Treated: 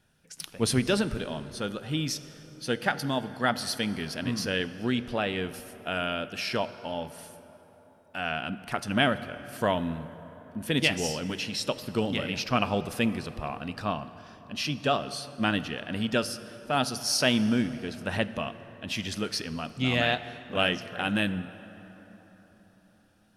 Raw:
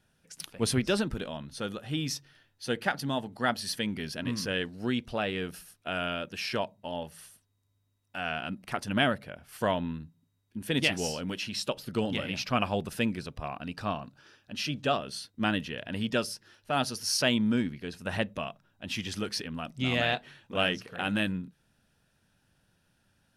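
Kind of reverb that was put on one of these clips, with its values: plate-style reverb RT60 4.3 s, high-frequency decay 0.5×, DRR 13 dB; trim +2 dB

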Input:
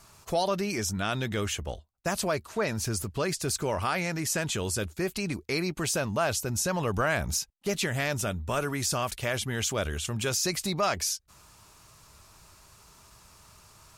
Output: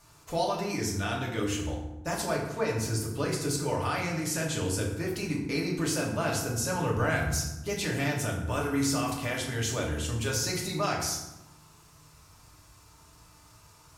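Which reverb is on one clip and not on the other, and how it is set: FDN reverb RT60 0.99 s, low-frequency decay 1.6×, high-frequency decay 0.6×, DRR -3 dB; trim -6 dB

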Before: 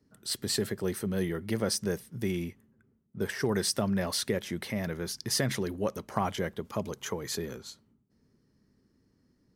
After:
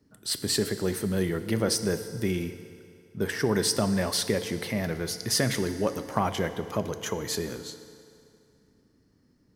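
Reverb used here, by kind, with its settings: FDN reverb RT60 2.5 s, low-frequency decay 0.8×, high-frequency decay 0.85×, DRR 9.5 dB; trim +3.5 dB

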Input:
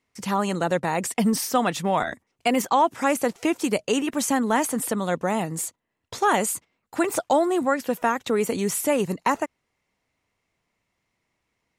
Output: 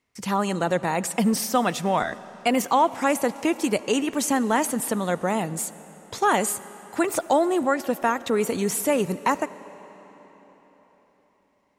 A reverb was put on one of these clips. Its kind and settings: algorithmic reverb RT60 4.5 s, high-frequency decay 0.85×, pre-delay 30 ms, DRR 16.5 dB

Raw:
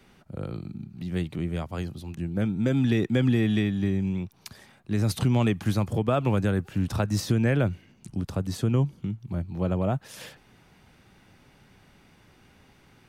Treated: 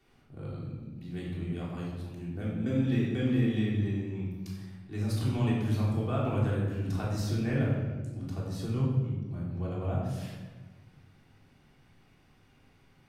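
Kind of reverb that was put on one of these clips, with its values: simulated room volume 860 m³, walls mixed, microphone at 3.4 m; trim -14 dB

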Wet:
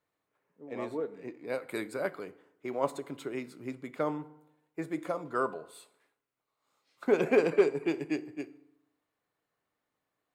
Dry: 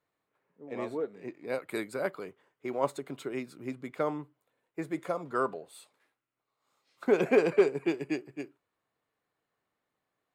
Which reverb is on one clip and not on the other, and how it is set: FDN reverb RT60 0.86 s, low-frequency decay 1×, high-frequency decay 0.65×, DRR 14 dB; trim -1 dB

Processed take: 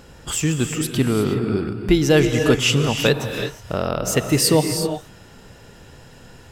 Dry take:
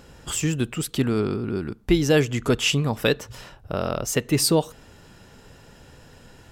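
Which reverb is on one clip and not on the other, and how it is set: gated-style reverb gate 390 ms rising, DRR 5.5 dB; trim +3 dB

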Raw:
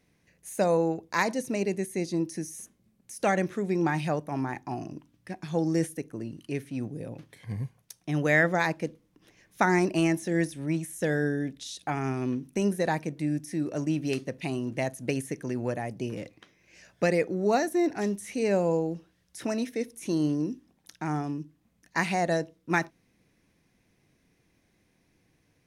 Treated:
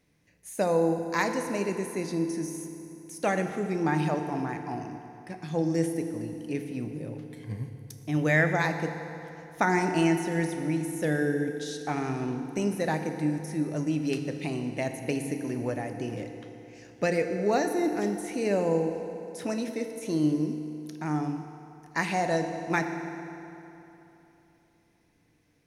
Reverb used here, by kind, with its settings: FDN reverb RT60 3.2 s, high-frequency decay 0.7×, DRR 5.5 dB; trim -1.5 dB

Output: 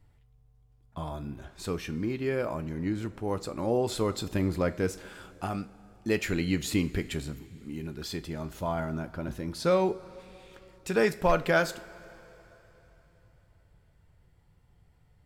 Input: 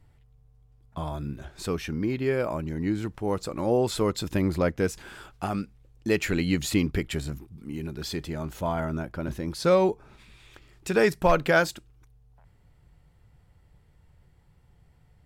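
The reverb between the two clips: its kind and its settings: two-slope reverb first 0.32 s, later 3.7 s, from -18 dB, DRR 10.5 dB; trim -3.5 dB

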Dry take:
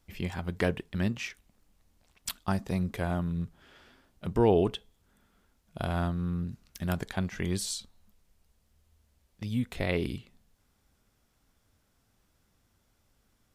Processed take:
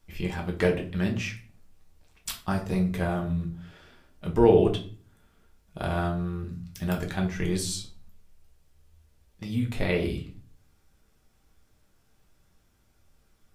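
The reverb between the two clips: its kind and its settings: simulated room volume 31 m³, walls mixed, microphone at 0.53 m

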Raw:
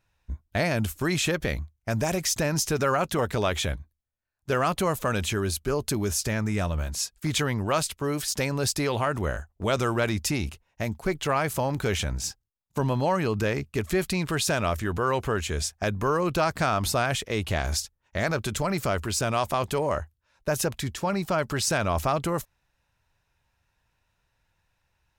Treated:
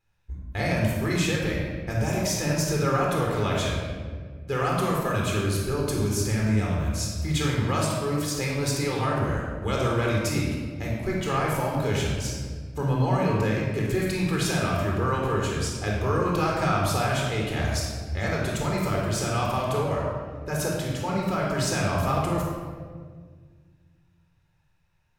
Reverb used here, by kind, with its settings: simulated room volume 2000 m³, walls mixed, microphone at 4 m; trim -7 dB

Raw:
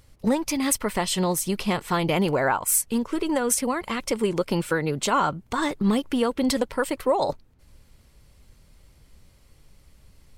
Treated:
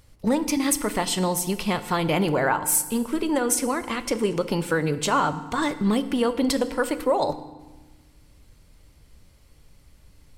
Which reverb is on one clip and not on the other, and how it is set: FDN reverb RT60 1.2 s, low-frequency decay 1.55×, high-frequency decay 0.85×, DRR 11 dB

